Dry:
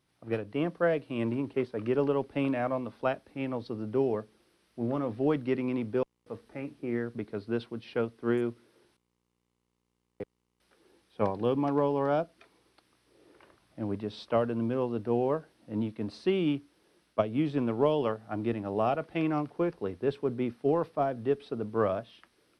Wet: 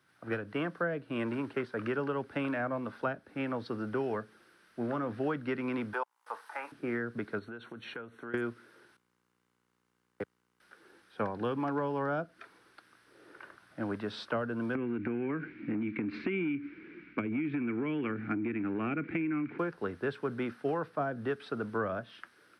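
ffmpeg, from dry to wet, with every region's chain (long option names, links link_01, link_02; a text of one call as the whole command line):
ffmpeg -i in.wav -filter_complex "[0:a]asettb=1/sr,asplit=3[link_01][link_02][link_03];[link_01]atrim=end=5.934[link_04];[link_02]atrim=start=5.93:end=6.72,asetpts=PTS-STARTPTS,afade=type=in:duration=0.004:curve=qsin,afade=type=out:start_time=0.786:duration=0.004:curve=qsin,highpass=frequency=900:width_type=q:width=5.2,aemphasis=mode=production:type=cd[link_05];[link_03]atrim=start=6.716[link_06];[link_04][link_05]acrossfade=duration=0.004:curve1=hsin:curve2=qsin[link_07];[link_07][link_06]acrossfade=duration=0.004:curve1=qsin:curve2=hsin,asettb=1/sr,asplit=3[link_08][link_09][link_10];[link_08]atrim=end=7.394[link_11];[link_09]atrim=start=7.39:end=8.34,asetpts=PTS-STARTPTS,afade=type=in:duration=0.004:curve=qsin,afade=type=out:start_time=0.946:duration=0.004:curve=qsin,acompressor=threshold=-42dB:ratio=12:attack=3.2:release=140:knee=1:detection=peak,asuperstop=centerf=4900:order=20:qfactor=4.9[link_12];[link_10]atrim=start=8.336[link_13];[link_11][link_12]acrossfade=duration=0.004:curve1=hsin:curve2=qsin[link_14];[link_14][link_13]acrossfade=duration=0.004:curve1=qsin:curve2=hsin,asettb=1/sr,asplit=3[link_15][link_16][link_17];[link_15]atrim=end=14.754[link_18];[link_16]atrim=start=14.75:end=19.59,asetpts=PTS-STARTPTS,afade=type=in:duration=0.004:curve=qsin,afade=type=out:start_time=4.836:duration=0.004:curve=qsin,lowshelf=frequency=440:width_type=q:width=3:gain=12.5,acompressor=threshold=-26dB:ratio=6:attack=3.2:release=140:knee=1:detection=peak,lowpass=frequency=2300:width_type=q:width=14[link_19];[link_17]atrim=start=19.586[link_20];[link_18][link_19]acrossfade=duration=0.004:curve1=hsin:curve2=qsin[link_21];[link_21][link_20]acrossfade=duration=0.004:curve1=qsin:curve2=hsin,highpass=100,equalizer=frequency=1500:width_type=o:width=0.62:gain=14.5,acrossover=split=260|710[link_22][link_23][link_24];[link_22]acompressor=threshold=-40dB:ratio=4[link_25];[link_23]acompressor=threshold=-38dB:ratio=4[link_26];[link_24]acompressor=threshold=-39dB:ratio=4[link_27];[link_25][link_26][link_27]amix=inputs=3:normalize=0,volume=1.5dB" out.wav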